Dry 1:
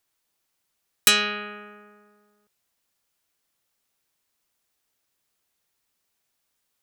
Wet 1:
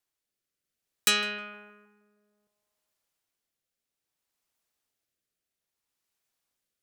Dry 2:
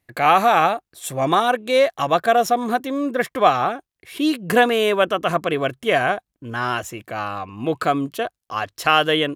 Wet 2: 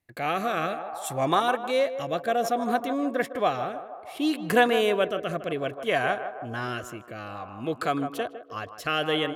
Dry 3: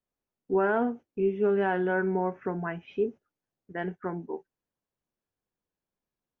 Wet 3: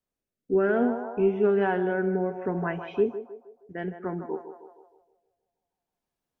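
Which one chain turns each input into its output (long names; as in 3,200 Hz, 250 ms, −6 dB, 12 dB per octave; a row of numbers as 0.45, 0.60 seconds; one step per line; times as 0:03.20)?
feedback echo with a band-pass in the loop 156 ms, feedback 61%, band-pass 730 Hz, level −9 dB
rotating-speaker cabinet horn 0.6 Hz
loudness normalisation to −27 LKFS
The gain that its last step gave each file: −5.0, −4.5, +4.0 decibels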